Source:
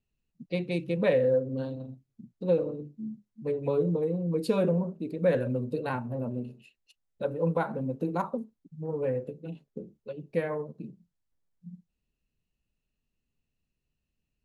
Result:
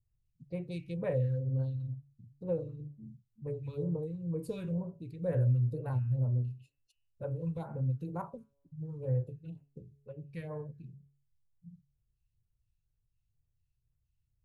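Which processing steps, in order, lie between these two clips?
resonant low shelf 160 Hz +10 dB, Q 3; de-hum 140.3 Hz, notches 22; phase shifter stages 2, 2.1 Hz, lowest notch 620–4200 Hz; trim -8 dB

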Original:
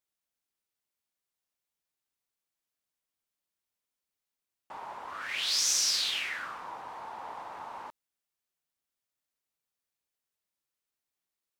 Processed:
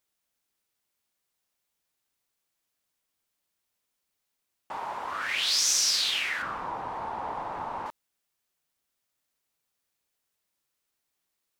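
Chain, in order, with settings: 6.42–7.86 s: tilt EQ -2.5 dB/octave; in parallel at +2.5 dB: compression, threshold -36 dBFS, peak gain reduction 11.5 dB

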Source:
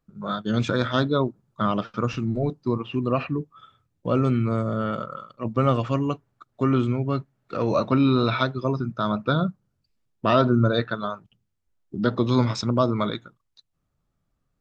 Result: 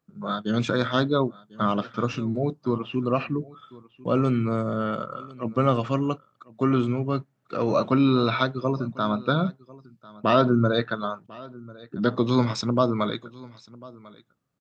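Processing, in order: high-pass 120 Hz; delay 1046 ms -21.5 dB

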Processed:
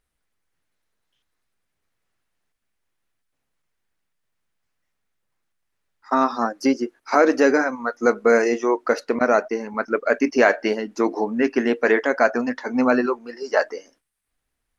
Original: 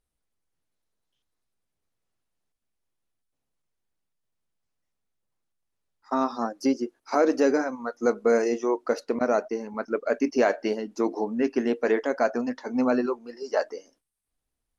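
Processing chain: peaking EQ 1.8 kHz +7.5 dB 1.4 oct; trim +4 dB

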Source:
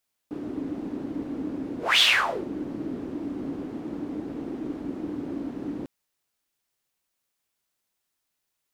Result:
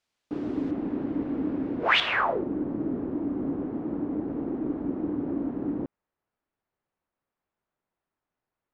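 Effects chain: low-pass 5.5 kHz 12 dB/octave, from 0.71 s 2.4 kHz, from 2.00 s 1.3 kHz; trim +3 dB

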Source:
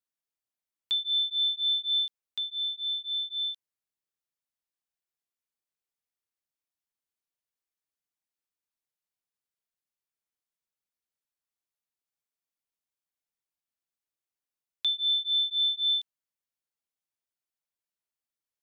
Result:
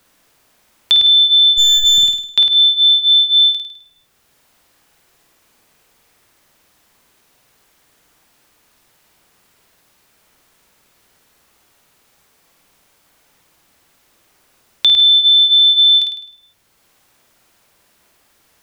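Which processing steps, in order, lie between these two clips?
1.57–1.98 s: comb filter that takes the minimum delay 0.91 ms; treble shelf 2.9 kHz -8 dB; flutter echo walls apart 8.9 m, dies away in 0.56 s; loudness maximiser +32.5 dB; three bands compressed up and down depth 40%; trim -5 dB

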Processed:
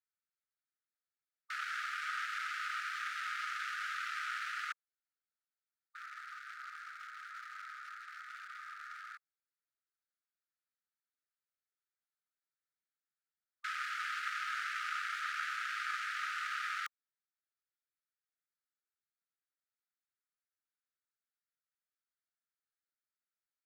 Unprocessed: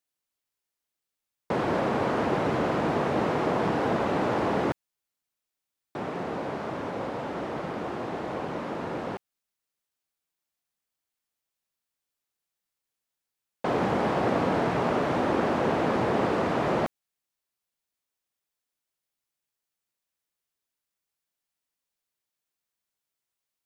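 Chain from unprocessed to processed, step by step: local Wiener filter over 15 samples; brick-wall FIR high-pass 1.2 kHz

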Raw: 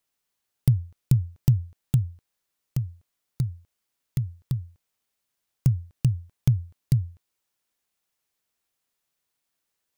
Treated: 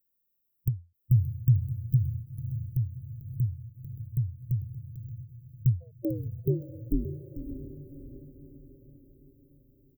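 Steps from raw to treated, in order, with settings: harmonic-percussive split harmonic +8 dB; 5.80–7.04 s: ring modulator 610 Hz -> 140 Hz; inverse Chebyshev band-stop 910–8100 Hz, stop band 50 dB; resonant low shelf 460 Hz -7.5 dB, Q 1.5; on a send: echo that smears into a reverb 590 ms, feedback 50%, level -14 dB; on the sum: dynamic bell 700 Hz, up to -6 dB, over -56 dBFS, Q 2.3; in parallel at -3 dB: compression, threshold -38 dBFS, peak gain reduction 20 dB; on the sum: multi-tap echo 446/575 ms -13/-17 dB; endings held to a fixed fall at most 210 dB/s; trim -1 dB

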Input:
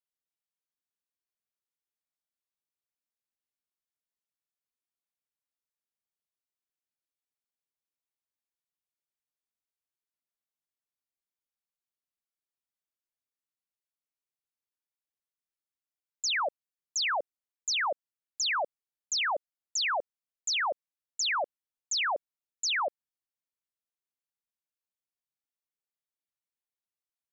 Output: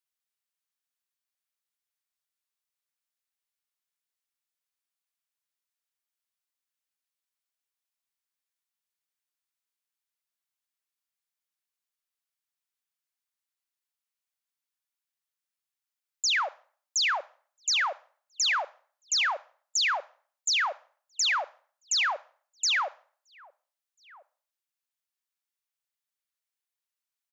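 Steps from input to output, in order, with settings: high-pass 1 kHz 12 dB/octave; echo from a far wall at 230 m, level -21 dB; on a send at -20 dB: reverberation RT60 0.45 s, pre-delay 28 ms; on the sum: trim +4 dB

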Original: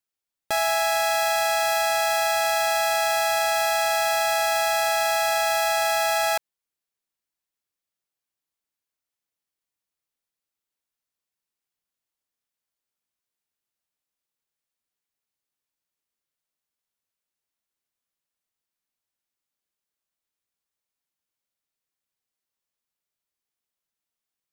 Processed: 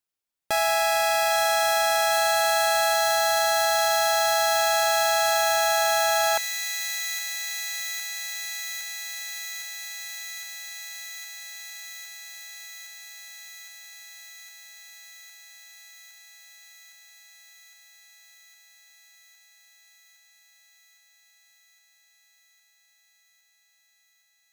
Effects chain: feedback echo behind a high-pass 811 ms, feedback 82%, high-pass 2.5 kHz, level -5 dB

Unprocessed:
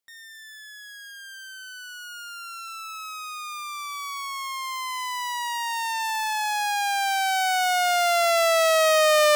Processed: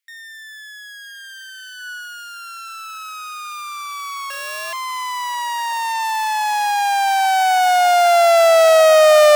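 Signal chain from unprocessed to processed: 4.30–4.73 s: sorted samples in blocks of 16 samples; echo that smears into a reverb 1149 ms, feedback 47%, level -15 dB; high-pass sweep 2 kHz -> 630 Hz, 1.75–2.27 s; trim +2.5 dB

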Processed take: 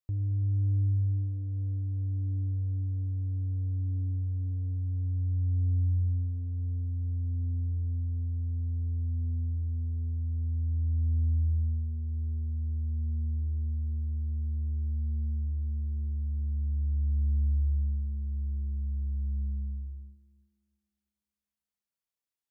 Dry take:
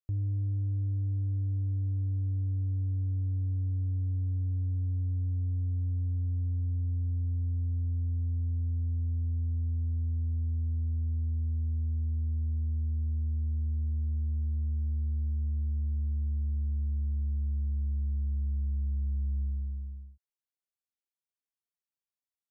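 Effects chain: multi-head delay 111 ms, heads all three, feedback 48%, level -17 dB

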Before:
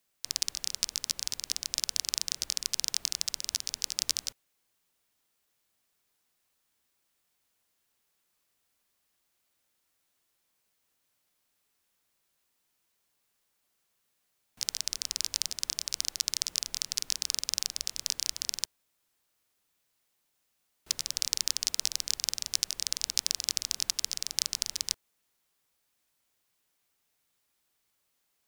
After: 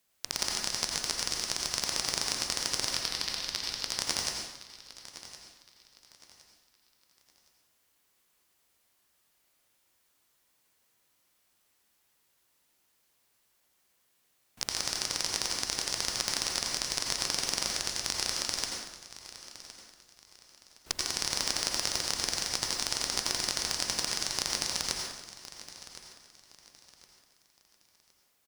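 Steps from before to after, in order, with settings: 2.85–3.89 s: low-pass 4.9 kHz 24 dB/octave; in parallel at -1 dB: peak limiter -11 dBFS, peak gain reduction 8 dB; on the sum: one-sided clip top -16.5 dBFS, bottom -3.5 dBFS; on a send: feedback delay 1064 ms, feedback 31%, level -15.5 dB; on the sum: plate-style reverb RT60 0.9 s, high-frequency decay 0.75×, pre-delay 75 ms, DRR -0.5 dB; trim -3.5 dB

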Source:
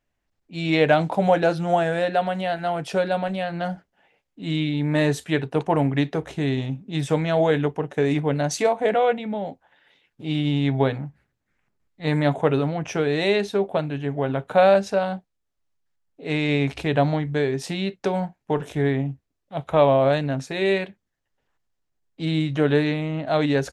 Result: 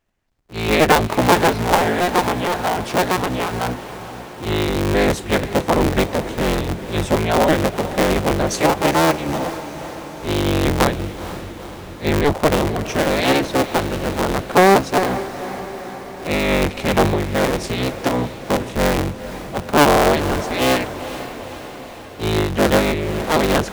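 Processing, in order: cycle switcher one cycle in 3, inverted; echo that smears into a reverb 473 ms, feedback 64%, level -13 dB; trim +4 dB

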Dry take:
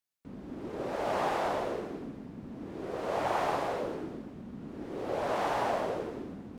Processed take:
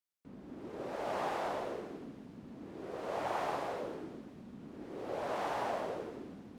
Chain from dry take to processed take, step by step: bass shelf 77 Hz -7 dB; on a send: feedback echo behind a high-pass 451 ms, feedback 71%, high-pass 2.7 kHz, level -20 dB; on the sum: trim -5.5 dB

